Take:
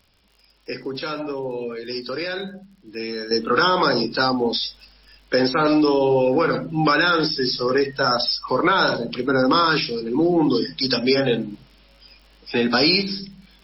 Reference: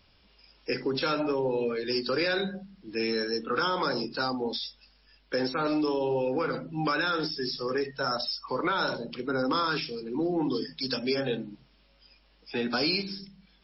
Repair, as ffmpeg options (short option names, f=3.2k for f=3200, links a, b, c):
-af "adeclick=t=4,asetnsamples=n=441:p=0,asendcmd='3.31 volume volume -10dB',volume=0dB"